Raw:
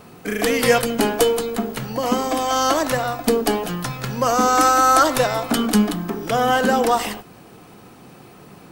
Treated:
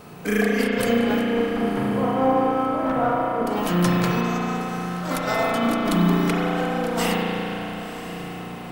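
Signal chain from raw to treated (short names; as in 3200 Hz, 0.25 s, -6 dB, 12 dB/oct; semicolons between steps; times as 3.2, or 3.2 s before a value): negative-ratio compressor -23 dBFS, ratio -0.5; 1.24–3.47 LPF 1300 Hz 12 dB/oct; diffused feedback echo 1.045 s, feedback 53%, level -13 dB; spring tank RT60 3.7 s, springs 34 ms, chirp 65 ms, DRR -4.5 dB; gain -4.5 dB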